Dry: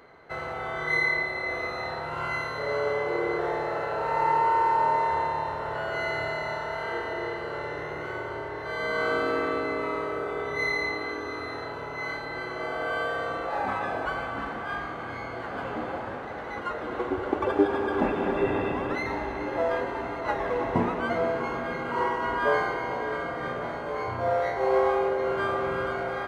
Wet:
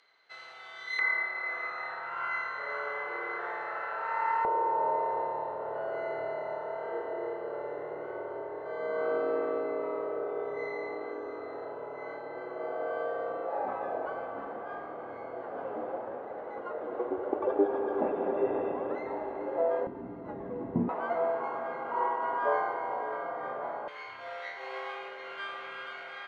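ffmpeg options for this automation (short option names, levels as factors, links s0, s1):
-af "asetnsamples=n=441:p=0,asendcmd='0.99 bandpass f 1500;4.45 bandpass f 540;19.87 bandpass f 210;20.89 bandpass f 790;23.88 bandpass f 2900',bandpass=f=4200:t=q:w=1.6:csg=0"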